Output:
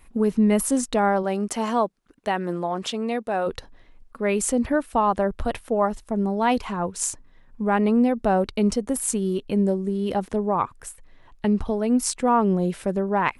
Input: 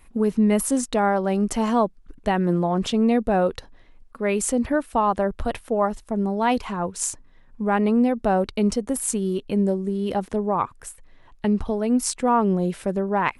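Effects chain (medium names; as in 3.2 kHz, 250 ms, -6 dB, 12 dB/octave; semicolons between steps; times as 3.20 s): 1.22–3.46 s: high-pass 270 Hz -> 770 Hz 6 dB/octave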